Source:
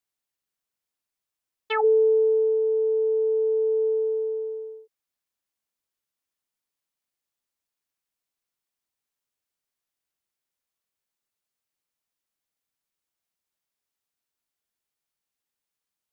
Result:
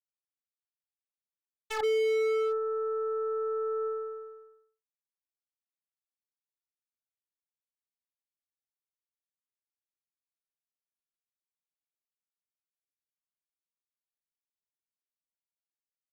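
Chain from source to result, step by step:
power curve on the samples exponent 3
hard clipping −28.5 dBFS, distortion −5 dB
level +4.5 dB

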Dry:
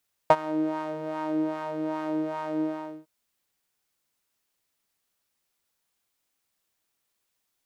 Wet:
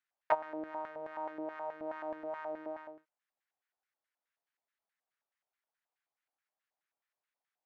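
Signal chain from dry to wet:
auto-filter band-pass square 4.7 Hz 740–1,700 Hz
level −2 dB

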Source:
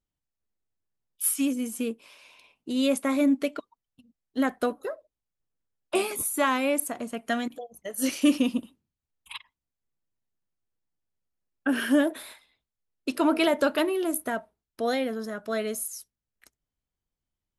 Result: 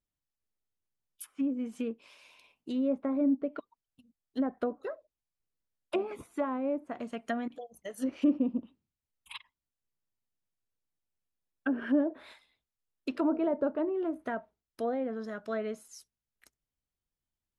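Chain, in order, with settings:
treble cut that deepens with the level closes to 730 Hz, closed at −22 dBFS
level −4.5 dB

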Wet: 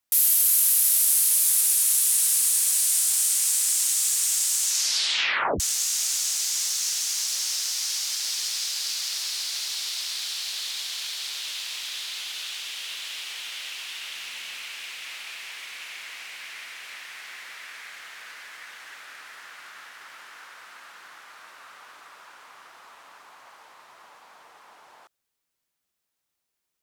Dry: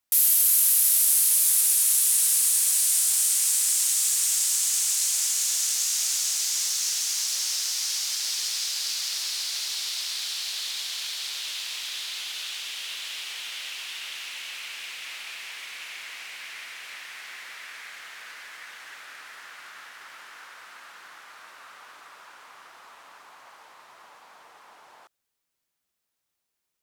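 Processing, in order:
0:04.60: tape stop 1.00 s
0:14.16–0:14.64: low-shelf EQ 200 Hz +9 dB

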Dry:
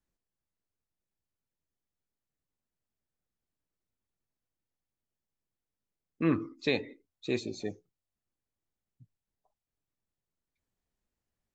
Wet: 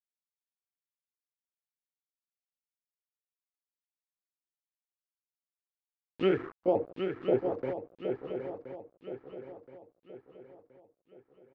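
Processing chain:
pitch shifter swept by a sawtooth +5.5 semitones, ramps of 193 ms
high-shelf EQ 2,200 Hz −10.5 dB
comb filter 2.3 ms, depth 31%
in parallel at −1 dB: downward compressor 6 to 1, threshold −44 dBFS, peak gain reduction 20 dB
on the sum: centre clipping without the shift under −42.5 dBFS
auto-filter low-pass sine 0.39 Hz 540–6,400 Hz
feedback echo with a long and a short gap by turns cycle 1,023 ms, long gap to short 3 to 1, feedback 41%, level −7 dB

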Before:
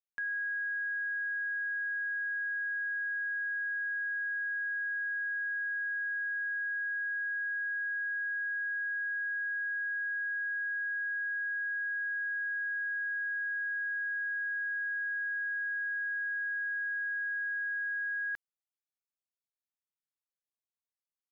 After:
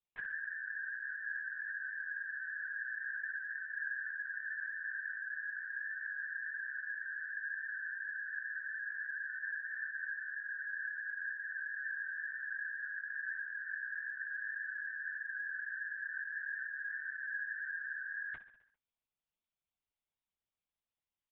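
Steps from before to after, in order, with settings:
parametric band 1,600 Hz −12.5 dB 0.26 octaves
random phases in short frames
double-tracking delay 18 ms −12 dB
repeating echo 66 ms, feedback 59%, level −13.5 dB
linear-prediction vocoder at 8 kHz whisper
level +3.5 dB

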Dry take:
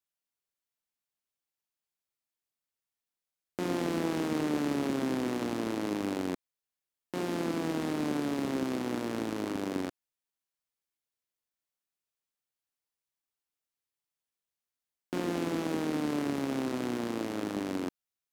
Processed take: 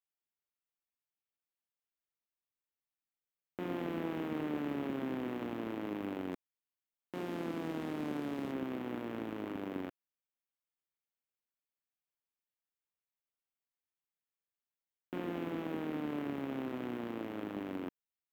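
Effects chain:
flat-topped bell 6,800 Hz −15 dB, from 0:06.31 −8 dB, from 0:08.51 −15 dB
level −6.5 dB

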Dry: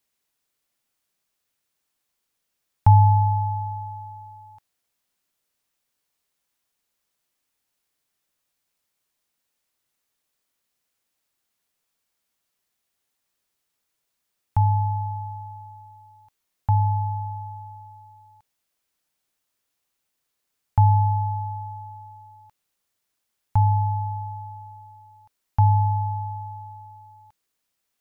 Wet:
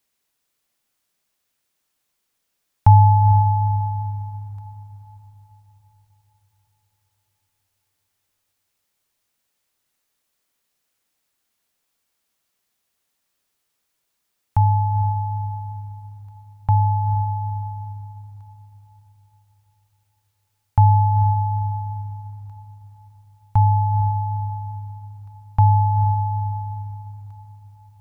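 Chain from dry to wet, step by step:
feedback delay with all-pass diffusion 466 ms, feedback 49%, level −10 dB
level +3 dB

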